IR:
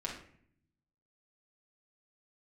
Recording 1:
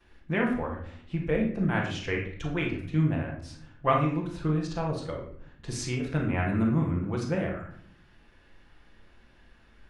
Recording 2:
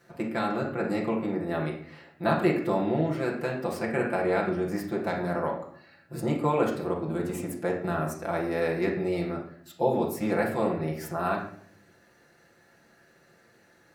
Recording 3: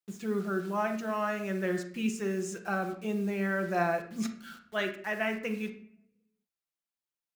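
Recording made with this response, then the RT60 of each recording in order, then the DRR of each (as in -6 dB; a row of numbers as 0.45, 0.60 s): 2; 0.60, 0.60, 0.60 s; -12.0, -4.0, 3.5 dB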